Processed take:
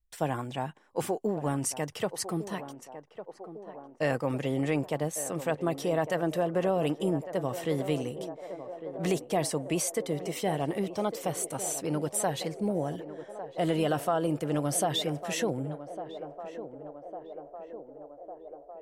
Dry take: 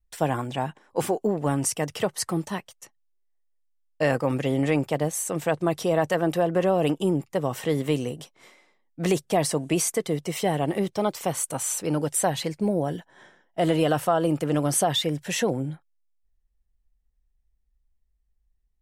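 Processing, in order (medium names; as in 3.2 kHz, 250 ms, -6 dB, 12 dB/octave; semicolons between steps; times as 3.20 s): band-passed feedback delay 1153 ms, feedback 77%, band-pass 570 Hz, level -10.5 dB; trim -5.5 dB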